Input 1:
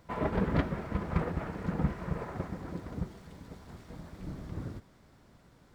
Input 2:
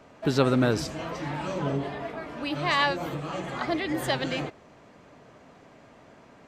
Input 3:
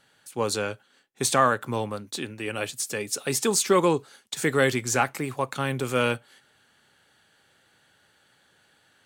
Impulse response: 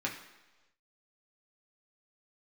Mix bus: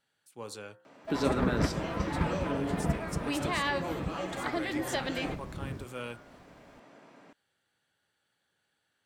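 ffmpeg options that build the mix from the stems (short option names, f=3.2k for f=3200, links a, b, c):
-filter_complex "[0:a]adelay=1050,volume=-0.5dB[a];[1:a]highpass=170,adelay=850,volume=-4dB,asplit=2[b][c];[c]volume=-14dB[d];[2:a]bandreject=f=65.08:t=h:w=4,bandreject=f=130.16:t=h:w=4,bandreject=f=195.24:t=h:w=4,bandreject=f=260.32:t=h:w=4,bandreject=f=325.4:t=h:w=4,bandreject=f=390.48:t=h:w=4,bandreject=f=455.56:t=h:w=4,bandreject=f=520.64:t=h:w=4,bandreject=f=585.72:t=h:w=4,bandreject=f=650.8:t=h:w=4,bandreject=f=715.88:t=h:w=4,bandreject=f=780.96:t=h:w=4,bandreject=f=846.04:t=h:w=4,bandreject=f=911.12:t=h:w=4,bandreject=f=976.2:t=h:w=4,bandreject=f=1.04128k:t=h:w=4,bandreject=f=1.10636k:t=h:w=4,bandreject=f=1.17144k:t=h:w=4,bandreject=f=1.23652k:t=h:w=4,bandreject=f=1.3016k:t=h:w=4,bandreject=f=1.36668k:t=h:w=4,bandreject=f=1.43176k:t=h:w=4,bandreject=f=1.49684k:t=h:w=4,bandreject=f=1.56192k:t=h:w=4,bandreject=f=1.627k:t=h:w=4,bandreject=f=1.69208k:t=h:w=4,bandreject=f=1.75716k:t=h:w=4,bandreject=f=1.82224k:t=h:w=4,bandreject=f=1.88732k:t=h:w=4,bandreject=f=1.9524k:t=h:w=4,volume=-15.5dB[e];[b][e]amix=inputs=2:normalize=0,bandreject=f=6.6k:w=27,acompressor=threshold=-30dB:ratio=6,volume=0dB[f];[3:a]atrim=start_sample=2205[g];[d][g]afir=irnorm=-1:irlink=0[h];[a][f][h]amix=inputs=3:normalize=0"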